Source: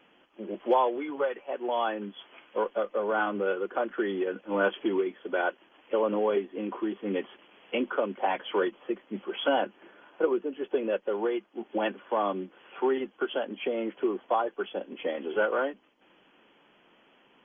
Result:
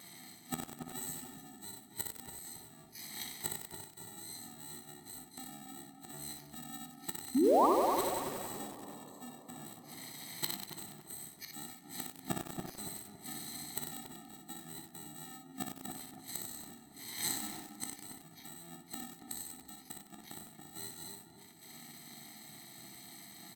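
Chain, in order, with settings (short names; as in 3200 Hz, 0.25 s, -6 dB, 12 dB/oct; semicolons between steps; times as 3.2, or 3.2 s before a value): FFT order left unsorted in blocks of 64 samples; HPF 94 Hz 12 dB/oct; bell 790 Hz +5 dB 2.2 oct; notches 60/120/180/240/300/360/420/480 Hz; flipped gate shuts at -29 dBFS, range -29 dB; flange 0.19 Hz, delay 8.4 ms, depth 6.2 ms, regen +57%; painted sound rise, 5.44–5.68, 310–1700 Hz -39 dBFS; doubler 45 ms -5 dB; darkening echo 0.207 s, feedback 45%, low-pass 1500 Hz, level -5 dB; on a send at -16.5 dB: reverb RT60 4.6 s, pre-delay 53 ms; on the sum: speed mistake 45 rpm record played at 33 rpm; lo-fi delay 95 ms, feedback 80%, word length 9-bit, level -6 dB; gain +12 dB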